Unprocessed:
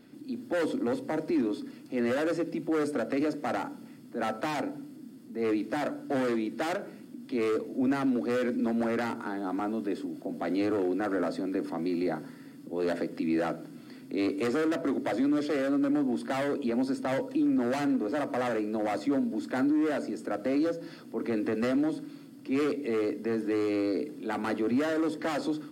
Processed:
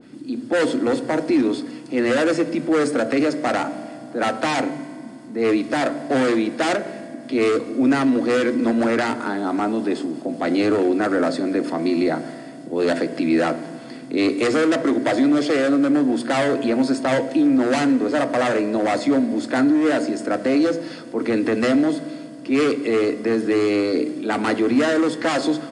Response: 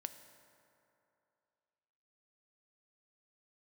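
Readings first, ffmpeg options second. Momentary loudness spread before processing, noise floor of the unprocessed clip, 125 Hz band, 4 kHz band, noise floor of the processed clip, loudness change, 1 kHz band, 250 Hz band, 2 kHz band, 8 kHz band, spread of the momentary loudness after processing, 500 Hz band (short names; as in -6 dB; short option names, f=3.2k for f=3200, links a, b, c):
9 LU, -49 dBFS, +9.0 dB, +13.5 dB, -37 dBFS, +10.0 dB, +10.0 dB, +9.5 dB, +12.0 dB, n/a, 9 LU, +10.0 dB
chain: -filter_complex "[0:a]bandreject=f=60:t=h:w=6,bandreject=f=120:t=h:w=6,bandreject=f=180:t=h:w=6,bandreject=f=240:t=h:w=6,asplit=2[a][b];[1:a]atrim=start_sample=2205,asetrate=48510,aresample=44100[c];[b][c]afir=irnorm=-1:irlink=0,volume=7.5dB[d];[a][d]amix=inputs=2:normalize=0,aresample=22050,aresample=44100,adynamicequalizer=threshold=0.0158:dfrequency=1800:dqfactor=0.7:tfrequency=1800:tqfactor=0.7:attack=5:release=100:ratio=0.375:range=2:mode=boostabove:tftype=highshelf,volume=2dB"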